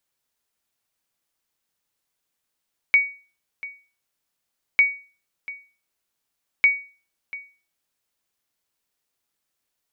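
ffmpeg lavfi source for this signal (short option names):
-f lavfi -i "aevalsrc='0.376*(sin(2*PI*2250*mod(t,1.85))*exp(-6.91*mod(t,1.85)/0.36)+0.126*sin(2*PI*2250*max(mod(t,1.85)-0.69,0))*exp(-6.91*max(mod(t,1.85)-0.69,0)/0.36))':d=5.55:s=44100"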